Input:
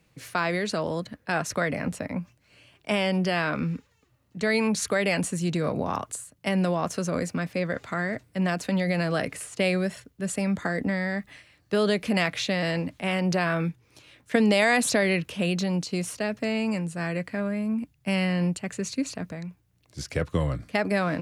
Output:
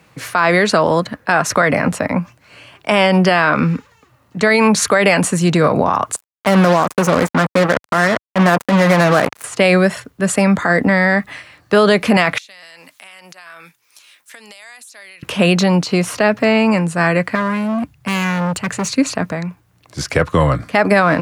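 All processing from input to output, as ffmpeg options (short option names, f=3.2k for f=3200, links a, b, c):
-filter_complex "[0:a]asettb=1/sr,asplit=3[a][b][c];[a]atrim=end=6.164[d];[b]atrim=start=6.16:end=9.44,asetpts=PTS-STARTPTS,afade=t=in:d=0.004:c=qsin,afade=t=out:st=3.276:d=0.004:c=qsin,equalizer=f=4.2k:t=o:w=2:g=-8,acrusher=bits=4:mix=0:aa=0.5[e];[c]atrim=start=9.436[f];[d][e]acrossfade=d=0.004:c1=hsin:c2=qsin[g];[g][f]acrossfade=d=0.004:c1=qsin:c2=hsin,asettb=1/sr,asplit=3[h][i][j];[h]atrim=end=12.384[k];[i]atrim=start=12.38:end=15.23,asetpts=PTS-STARTPTS,afade=t=in:d=0.004:c=qsin,afade=t=out:st=2.846:d=0.004:c=qsin,aderivative,acompressor=threshold=-50dB:ratio=10:attack=3.2:release=140:knee=1:detection=peak[l];[j]atrim=start=15.226[m];[k][l]acrossfade=d=0.004:c1=hsin:c2=qsin[n];[n][m]acrossfade=d=0.004:c1=qsin:c2=hsin,asettb=1/sr,asplit=3[o][p][q];[o]atrim=end=15.804[r];[p]atrim=start=15.8:end=16.78,asetpts=PTS-STARTPTS,afade=t=in:d=0.004:c=qsin,afade=t=out:st=0.976:d=0.004:c=qsin,equalizer=f=8.4k:w=0.83:g=-5.5,acompressor=mode=upward:threshold=-33dB:ratio=2.5:attack=3.2:release=140:knee=2.83:detection=peak[s];[q]atrim=start=16.776[t];[r][s]acrossfade=d=0.004:c1=hsin:c2=qsin[u];[u][t]acrossfade=d=0.004:c1=qsin:c2=hsin,asettb=1/sr,asplit=3[v][w][x];[v]atrim=end=17.354[y];[w]atrim=start=17.35:end=18.88,asetpts=PTS-STARTPTS,afade=t=in:d=0.004:c=qsin,afade=t=out:st=1.526:d=0.004:c=qsin,highpass=f=53:p=1,equalizer=f=70:w=0.64:g=8,asoftclip=type=hard:threshold=-30dB[z];[x]atrim=start=18.876[aa];[y][z]acrossfade=d=0.004:c1=hsin:c2=qsin[ab];[ab][aa]acrossfade=d=0.004:c1=qsin:c2=hsin,highpass=74,equalizer=f=1.1k:w=0.83:g=8.5,alimiter=level_in=14dB:limit=-1dB:release=50:level=0:latency=1,volume=-2dB"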